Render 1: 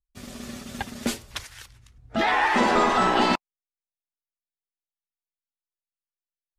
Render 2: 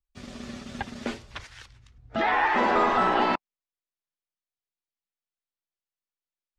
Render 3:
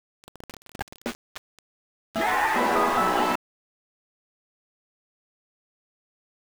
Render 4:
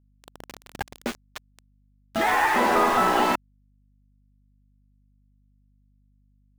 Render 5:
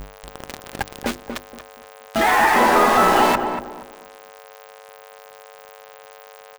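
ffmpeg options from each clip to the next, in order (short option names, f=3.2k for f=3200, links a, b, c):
-filter_complex "[0:a]acrossover=split=2600[a][b];[b]acompressor=threshold=-40dB:ratio=4:attack=1:release=60[c];[a][c]amix=inputs=2:normalize=0,lowpass=5.6k,acrossover=split=340[d][e];[d]alimiter=level_in=3.5dB:limit=-24dB:level=0:latency=1,volume=-3.5dB[f];[f][e]amix=inputs=2:normalize=0,volume=-1dB"
-af "aeval=exprs='val(0)*gte(abs(val(0)),0.0299)':c=same"
-af "aeval=exprs='val(0)+0.000708*(sin(2*PI*50*n/s)+sin(2*PI*2*50*n/s)/2+sin(2*PI*3*50*n/s)/3+sin(2*PI*4*50*n/s)/4+sin(2*PI*5*50*n/s)/5)':c=same,volume=2dB"
-filter_complex "[0:a]aeval=exprs='val(0)+0.5*0.0376*sgn(val(0))':c=same,bandreject=f=50:t=h:w=6,bandreject=f=100:t=h:w=6,bandreject=f=150:t=h:w=6,bandreject=f=200:t=h:w=6,bandreject=f=250:t=h:w=6,bandreject=f=300:t=h:w=6,bandreject=f=350:t=h:w=6,asplit=2[a][b];[b]adelay=236,lowpass=f=1.2k:p=1,volume=-6dB,asplit=2[c][d];[d]adelay=236,lowpass=f=1.2k:p=1,volume=0.3,asplit=2[e][f];[f]adelay=236,lowpass=f=1.2k:p=1,volume=0.3,asplit=2[g][h];[h]adelay=236,lowpass=f=1.2k:p=1,volume=0.3[i];[a][c][e][g][i]amix=inputs=5:normalize=0,volume=4dB"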